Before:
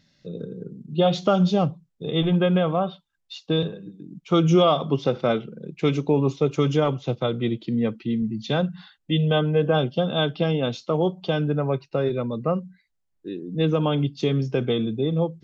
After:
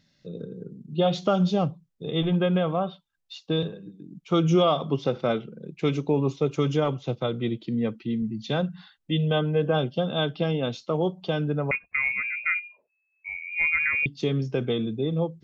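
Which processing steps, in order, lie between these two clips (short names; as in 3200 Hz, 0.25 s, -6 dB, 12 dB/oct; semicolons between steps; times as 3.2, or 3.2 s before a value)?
11.71–14.06 inverted band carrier 2600 Hz; gain -3 dB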